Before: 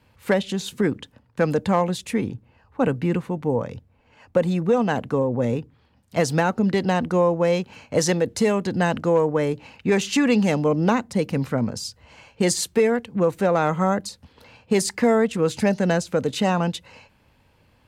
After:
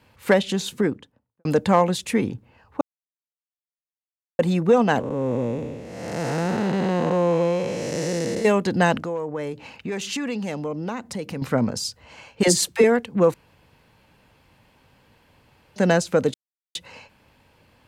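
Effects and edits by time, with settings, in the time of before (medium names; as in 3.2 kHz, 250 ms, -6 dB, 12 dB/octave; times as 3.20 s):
0.54–1.45 s: studio fade out
2.81–4.39 s: mute
5.00–8.45 s: spectral blur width 459 ms
8.97–11.42 s: compression 3:1, threshold -31 dBFS
12.43–12.84 s: phase dispersion lows, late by 49 ms, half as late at 430 Hz
13.34–15.76 s: room tone
16.34–16.75 s: mute
whole clip: bass shelf 140 Hz -6.5 dB; trim +3.5 dB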